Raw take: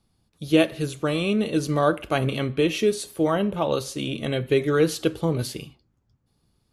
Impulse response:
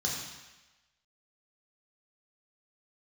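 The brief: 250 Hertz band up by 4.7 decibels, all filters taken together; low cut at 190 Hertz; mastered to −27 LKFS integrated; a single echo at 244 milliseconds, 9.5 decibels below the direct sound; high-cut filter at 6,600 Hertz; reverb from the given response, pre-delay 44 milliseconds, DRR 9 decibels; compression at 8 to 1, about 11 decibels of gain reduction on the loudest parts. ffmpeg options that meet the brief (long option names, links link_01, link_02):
-filter_complex "[0:a]highpass=190,lowpass=6600,equalizer=frequency=250:width_type=o:gain=8,acompressor=threshold=-20dB:ratio=8,aecho=1:1:244:0.335,asplit=2[link_01][link_02];[1:a]atrim=start_sample=2205,adelay=44[link_03];[link_02][link_03]afir=irnorm=-1:irlink=0,volume=-15dB[link_04];[link_01][link_04]amix=inputs=2:normalize=0,volume=-1.5dB"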